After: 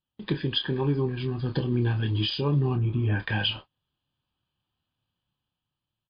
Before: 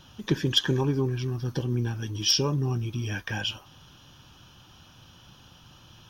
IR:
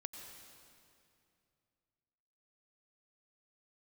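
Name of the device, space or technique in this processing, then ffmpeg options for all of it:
low-bitrate web radio: -filter_complex "[0:a]asettb=1/sr,asplit=3[link_01][link_02][link_03];[link_01]atrim=end=2.754[link_04];[link_02]atrim=start=2.75:end=3.2,asetpts=PTS-STARTPTS,afade=type=in:duration=0.004:curve=qsin,afade=type=out:start_time=0.446:duration=0.004:curve=qsin,lowpass=1500[link_05];[link_03]atrim=start=3.196[link_06];[link_04][link_05]acrossfade=duration=0.004:curve1=hsin:curve2=qsin[link_07];[link_07][link_06]acrossfade=duration=0.004:curve1=qsin:curve2=hsin,bandreject=frequency=1400:width=11,agate=range=-36dB:threshold=-40dB:ratio=16:detection=peak,asplit=2[link_08][link_09];[link_09]adelay=28,volume=-8dB[link_10];[link_08][link_10]amix=inputs=2:normalize=0,dynaudnorm=framelen=380:gausssize=7:maxgain=7.5dB,alimiter=limit=-14dB:level=0:latency=1:release=362,volume=-1dB" -ar 11025 -c:a libmp3lame -b:a 40k

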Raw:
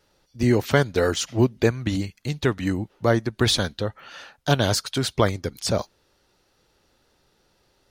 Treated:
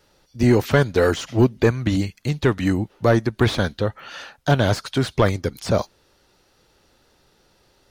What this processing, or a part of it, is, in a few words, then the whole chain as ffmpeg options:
saturation between pre-emphasis and de-emphasis: -filter_complex "[0:a]highshelf=frequency=2500:gain=11.5,asoftclip=type=tanh:threshold=-11dB,highshelf=frequency=2500:gain=-11.5,acrossover=split=2600[link_01][link_02];[link_02]acompressor=threshold=-37dB:ratio=4:attack=1:release=60[link_03];[link_01][link_03]amix=inputs=2:normalize=0,volume=5dB"

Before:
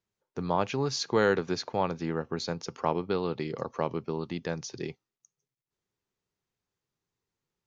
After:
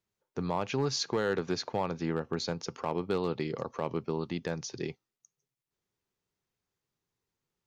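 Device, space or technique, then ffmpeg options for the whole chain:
limiter into clipper: -af "alimiter=limit=-18.5dB:level=0:latency=1:release=126,asoftclip=type=hard:threshold=-20.5dB"

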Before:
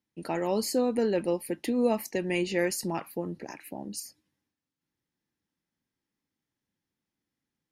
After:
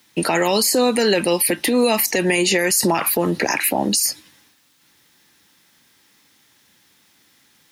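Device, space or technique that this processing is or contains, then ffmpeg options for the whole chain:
mastering chain: -filter_complex "[0:a]highpass=42,equalizer=frequency=3700:width_type=o:width=0.25:gain=3.5,acrossover=split=270|1800|6700[link_01][link_02][link_03][link_04];[link_01]acompressor=threshold=-41dB:ratio=4[link_05];[link_02]acompressor=threshold=-37dB:ratio=4[link_06];[link_03]acompressor=threshold=-50dB:ratio=4[link_07];[link_04]acompressor=threshold=-42dB:ratio=4[link_08];[link_05][link_06][link_07][link_08]amix=inputs=4:normalize=0,acompressor=threshold=-39dB:ratio=2,tiltshelf=frequency=640:gain=-7,alimiter=level_in=34dB:limit=-1dB:release=50:level=0:latency=1,asettb=1/sr,asplit=3[link_09][link_10][link_11];[link_09]atrim=end=1.254[link_12];[link_10]atrim=start=1.25:end=1.95,asetpts=PTS-STARTPTS,afade=type=in:duration=0.004:curve=qsin,afade=type=out:start_time=0.696:duration=0.004:curve=qsin,bandreject=frequency=6900:width=9.4[link_13];[link_11]atrim=start=1.946[link_14];[link_12][link_13]acrossfade=duration=0.004:curve1=hsin:curve2=qsin[link_15];[link_15][link_14]acrossfade=duration=0.004:curve1=qsin:curve2=hsin,volume=-7.5dB"

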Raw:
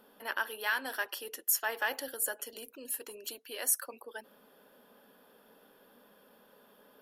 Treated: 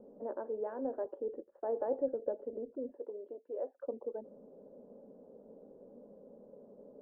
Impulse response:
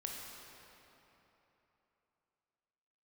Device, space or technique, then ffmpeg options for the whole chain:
under water: -filter_complex "[0:a]lowpass=frequency=560:width=0.5412,lowpass=frequency=560:width=1.3066,equalizer=frequency=560:width_type=o:width=0.33:gain=5,asettb=1/sr,asplit=3[link_01][link_02][link_03];[link_01]atrim=end=2.964[link_04];[link_02]atrim=start=2.96:end=3.81,asetpts=PTS-STARTPTS,afade=type=in:duration=0.004:curve=qsin,afade=type=out:start_time=0.846:duration=0.004:curve=qsin,highpass=440[link_05];[link_03]atrim=start=3.806[link_06];[link_04][link_05]acrossfade=duration=0.004:curve1=hsin:curve2=qsin[link_07];[link_07][link_06]acrossfade=duration=0.004:curve1=qsin:curve2=hsin,volume=8dB"

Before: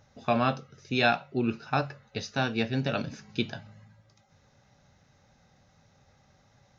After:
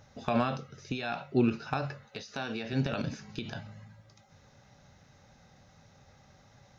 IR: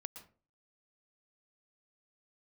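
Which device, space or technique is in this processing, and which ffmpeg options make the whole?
de-esser from a sidechain: -filter_complex "[0:a]asplit=2[link_01][link_02];[link_02]highpass=5000,apad=whole_len=299336[link_03];[link_01][link_03]sidechaincompress=threshold=-54dB:ratio=4:attack=4.5:release=48,asettb=1/sr,asplit=3[link_04][link_05][link_06];[link_04]atrim=end=2.054[link_07];[link_05]atrim=start=2.05:end=2.73,asetpts=PTS-STARTPTS,afade=type=in:duration=0.004:curve=qsin,afade=type=out:start_time=0.676:duration=0.004:curve=qsin,highpass=frequency=260:poles=1[link_08];[link_06]atrim=start=2.726[link_09];[link_07][link_08]acrossfade=duration=0.004:curve1=hsin:curve2=qsin[link_10];[link_10][link_09]acrossfade=duration=0.004:curve1=qsin:curve2=hsin,volume=3.5dB"

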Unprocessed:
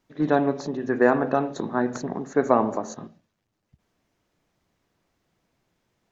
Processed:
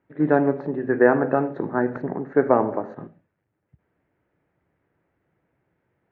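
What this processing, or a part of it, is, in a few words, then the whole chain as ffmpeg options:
bass cabinet: -af "highpass=68,equalizer=frequency=220:width_type=q:width=4:gain=-7,equalizer=frequency=700:width_type=q:width=4:gain=-4,equalizer=frequency=1100:width_type=q:width=4:gain=-7,lowpass=frequency=2000:width=0.5412,lowpass=frequency=2000:width=1.3066,volume=4dB"

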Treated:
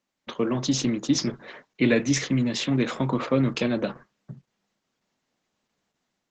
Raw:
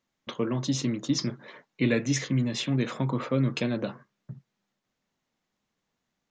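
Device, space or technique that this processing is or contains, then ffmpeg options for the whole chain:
video call: -af "highpass=160,dynaudnorm=framelen=140:gausssize=5:maxgain=5dB" -ar 48000 -c:a libopus -b:a 12k

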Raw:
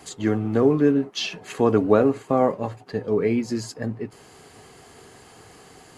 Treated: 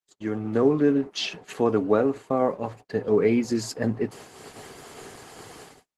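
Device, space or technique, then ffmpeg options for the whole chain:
video call: -af "highpass=frequency=150:poles=1,dynaudnorm=framelen=140:gausssize=5:maxgain=15dB,agate=range=-46dB:threshold=-34dB:ratio=16:detection=peak,volume=-8dB" -ar 48000 -c:a libopus -b:a 16k

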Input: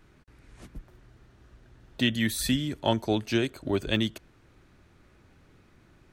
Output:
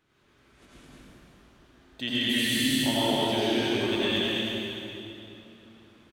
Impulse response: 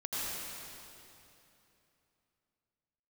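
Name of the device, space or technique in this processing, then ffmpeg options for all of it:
stadium PA: -filter_complex "[0:a]highpass=frequency=210:poles=1,equalizer=frequency=3300:width_type=o:width=0.55:gain=5,aecho=1:1:151.6|212.8:0.355|0.794[link_01];[1:a]atrim=start_sample=2205[link_02];[link_01][link_02]afir=irnorm=-1:irlink=0,volume=-5dB"

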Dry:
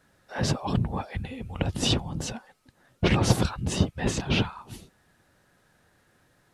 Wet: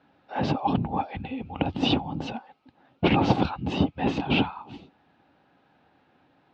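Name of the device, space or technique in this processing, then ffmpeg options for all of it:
guitar cabinet: -af "highpass=88,equalizer=frequency=110:width_type=q:width=4:gain=-6,equalizer=frequency=280:width_type=q:width=4:gain=9,equalizer=frequency=810:width_type=q:width=4:gain=10,equalizer=frequency=1800:width_type=q:width=4:gain=-6,equalizer=frequency=2600:width_type=q:width=4:gain=4,lowpass=frequency=3800:width=0.5412,lowpass=frequency=3800:width=1.3066"

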